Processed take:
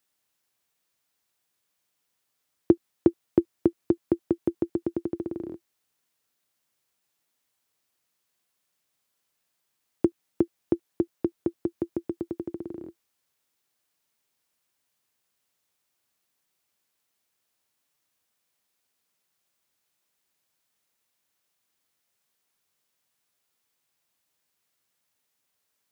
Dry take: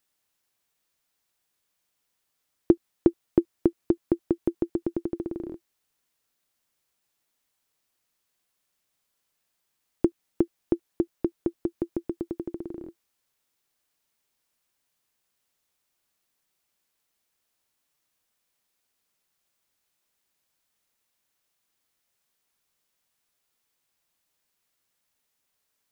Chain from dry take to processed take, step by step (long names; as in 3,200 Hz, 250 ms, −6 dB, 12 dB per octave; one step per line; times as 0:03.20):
high-pass filter 70 Hz 24 dB per octave